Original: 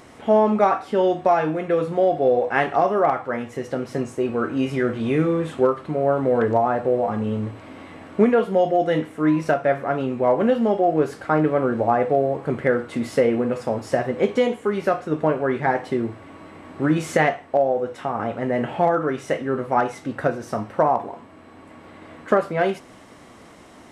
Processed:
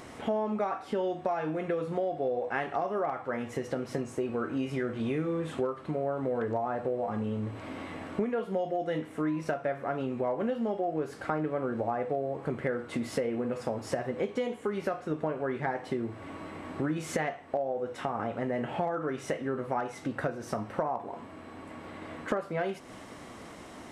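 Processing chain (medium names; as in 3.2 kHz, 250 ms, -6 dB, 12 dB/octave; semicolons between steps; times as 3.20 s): compression 4:1, threshold -30 dBFS, peak gain reduction 16 dB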